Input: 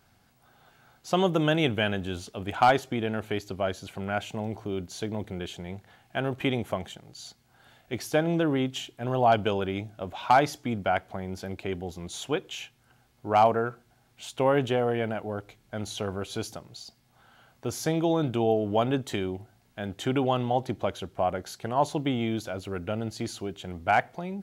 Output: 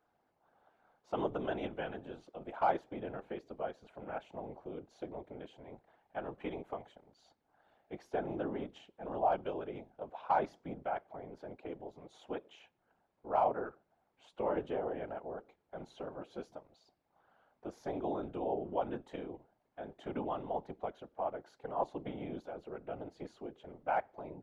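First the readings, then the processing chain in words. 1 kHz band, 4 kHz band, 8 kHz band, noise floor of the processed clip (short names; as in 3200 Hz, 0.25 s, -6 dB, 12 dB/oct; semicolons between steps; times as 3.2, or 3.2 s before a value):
-10.0 dB, -22.0 dB, under -25 dB, -79 dBFS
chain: dynamic EQ 560 Hz, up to -4 dB, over -33 dBFS, Q 1.4; band-pass 610 Hz, Q 1.1; whisperiser; gain -6.5 dB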